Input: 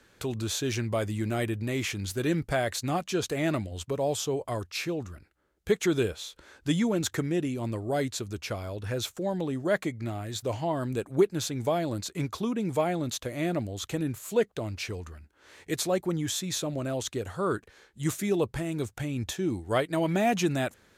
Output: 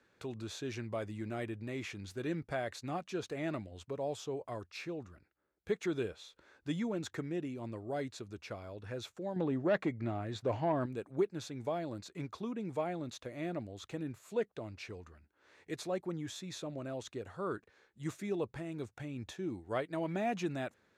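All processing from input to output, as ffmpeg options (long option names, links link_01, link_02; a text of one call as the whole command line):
ffmpeg -i in.wav -filter_complex "[0:a]asettb=1/sr,asplit=3[link_01][link_02][link_03];[link_01]atrim=end=9.364[link_04];[link_02]atrim=start=9.36:end=10.86,asetpts=PTS-STARTPTS,afade=type=in:duration=0.004:curve=qsin,afade=type=out:start_time=1.496:duration=0.004:curve=qsin,lowpass=frequency=2600:poles=1,aeval=exprs='0.178*sin(PI/2*1.58*val(0)/0.178)':channel_layout=same[link_05];[link_03]atrim=start=10.856[link_06];[link_04][link_05]acrossfade=duration=0.004:curve1=hsin:curve2=qsin[link_07];[link_07][link_06]acrossfade=duration=0.004:curve1=qsin:curve2=hsin,highpass=frequency=130:poles=1,aemphasis=mode=reproduction:type=50fm,bandreject=frequency=3100:width=19,volume=-9dB" out.wav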